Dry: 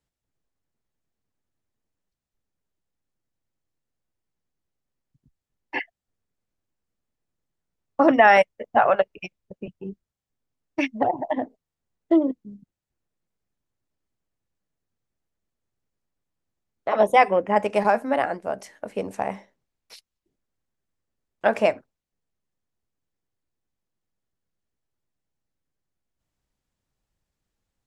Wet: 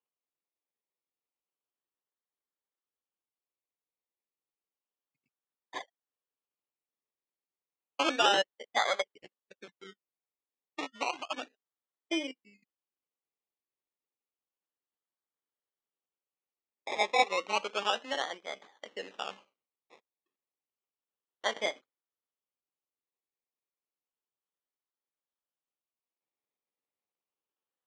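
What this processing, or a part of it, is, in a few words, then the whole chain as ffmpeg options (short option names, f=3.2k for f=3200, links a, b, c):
circuit-bent sampling toy: -af "acrusher=samples=23:mix=1:aa=0.000001:lfo=1:lforange=13.8:lforate=0.31,highpass=510,equalizer=f=650:t=q:w=4:g=-7,equalizer=f=930:t=q:w=4:g=-3,equalizer=f=1.5k:t=q:w=4:g=-4,equalizer=f=3k:t=q:w=4:g=4,equalizer=f=4.7k:t=q:w=4:g=-7,lowpass=f=5.8k:w=0.5412,lowpass=f=5.8k:w=1.3066,volume=-7dB"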